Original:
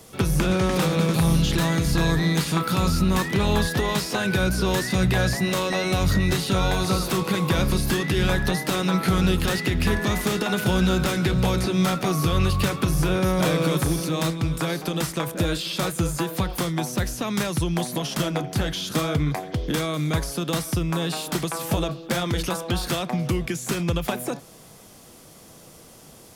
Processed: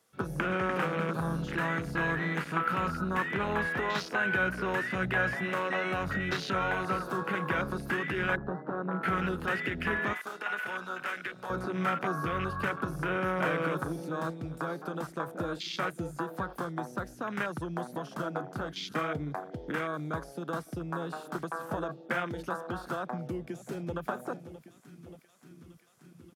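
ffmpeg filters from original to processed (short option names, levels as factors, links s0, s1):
-filter_complex "[0:a]asplit=3[s0][s1][s2];[s0]afade=t=out:st=8.35:d=0.02[s3];[s1]lowpass=1000,afade=t=in:st=8.35:d=0.02,afade=t=out:st=9.02:d=0.02[s4];[s2]afade=t=in:st=9.02:d=0.02[s5];[s3][s4][s5]amix=inputs=3:normalize=0,asettb=1/sr,asplit=3[s6][s7][s8];[s6]atrim=end=10.134[s9];[s7]atrim=start=10.13:end=11.5,asetpts=PTS-STARTPTS,afade=t=in:d=0.004:c=qsin,afade=t=out:st=1.366:d=0.004:c=qsin,highpass=f=1300:p=1[s10];[s8]atrim=start=11.496[s11];[s9][s10]acrossfade=d=0.004:c1=hsin:c2=qsin[s12];[s12][s11]acrossfade=d=0.004:c1=qsin:c2=hsin,asplit=2[s13][s14];[s14]afade=t=in:st=22.96:d=0.01,afade=t=out:st=24.07:d=0.01,aecho=0:1:580|1160|1740|2320|2900|3480|4060|4640|5220|5800|6380|6960:0.251189|0.200951|0.160761|0.128609|0.102887|0.0823095|0.0658476|0.0526781|0.0421425|0.033714|0.0269712|0.0215769[s15];[s13][s15]amix=inputs=2:normalize=0,afwtdn=0.0316,highpass=f=320:p=1,equalizer=f=1500:w=1.9:g=8.5,volume=0.473"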